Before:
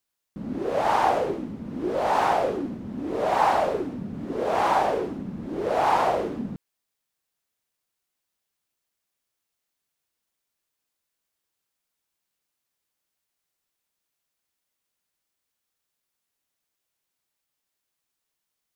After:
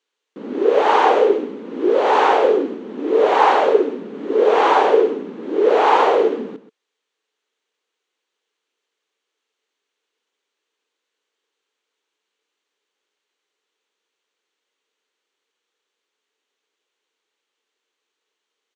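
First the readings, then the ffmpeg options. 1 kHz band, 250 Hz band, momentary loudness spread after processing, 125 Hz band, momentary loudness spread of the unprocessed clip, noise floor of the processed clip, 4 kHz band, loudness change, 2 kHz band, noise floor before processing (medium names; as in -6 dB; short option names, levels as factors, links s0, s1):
+6.5 dB, +6.0 dB, 13 LU, no reading, 13 LU, -81 dBFS, +9.0 dB, +9.0 dB, +8.5 dB, -82 dBFS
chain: -af "highpass=f=290:w=0.5412,highpass=f=290:w=1.3066,equalizer=f=440:t=q:w=4:g=10,equalizer=f=670:t=q:w=4:g=-7,equalizer=f=3100:t=q:w=4:g=3,equalizer=f=5100:t=q:w=4:g=-8,lowpass=f=6200:w=0.5412,lowpass=f=6200:w=1.3066,aecho=1:1:129:0.2,volume=2.51"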